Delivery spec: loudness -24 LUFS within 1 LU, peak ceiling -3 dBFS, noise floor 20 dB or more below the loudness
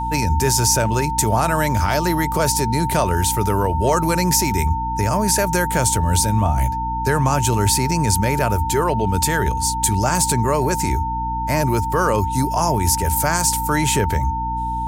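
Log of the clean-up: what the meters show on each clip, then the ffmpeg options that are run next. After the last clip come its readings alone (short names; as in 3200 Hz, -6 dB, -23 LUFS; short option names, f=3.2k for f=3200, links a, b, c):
hum 60 Hz; harmonics up to 300 Hz; hum level -25 dBFS; steady tone 900 Hz; tone level -22 dBFS; loudness -18.5 LUFS; peak -3.0 dBFS; loudness target -24.0 LUFS
-> -af "bandreject=f=60:t=h:w=6,bandreject=f=120:t=h:w=6,bandreject=f=180:t=h:w=6,bandreject=f=240:t=h:w=6,bandreject=f=300:t=h:w=6"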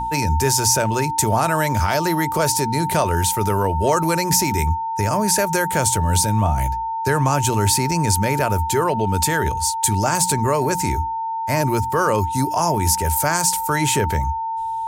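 hum none; steady tone 900 Hz; tone level -22 dBFS
-> -af "bandreject=f=900:w=30"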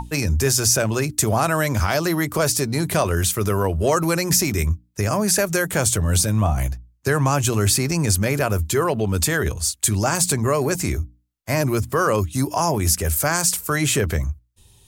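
steady tone none; loudness -20.0 LUFS; peak -4.0 dBFS; loudness target -24.0 LUFS
-> -af "volume=-4dB"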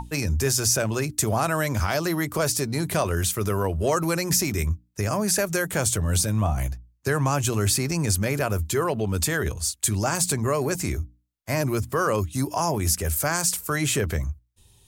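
loudness -24.0 LUFS; peak -8.0 dBFS; noise floor -63 dBFS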